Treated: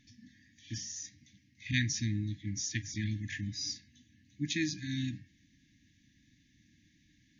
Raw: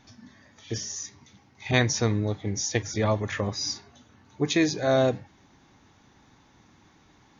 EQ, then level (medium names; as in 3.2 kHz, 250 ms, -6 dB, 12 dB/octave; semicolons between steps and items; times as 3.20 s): brick-wall FIR band-stop 330–1600 Hz; -7.0 dB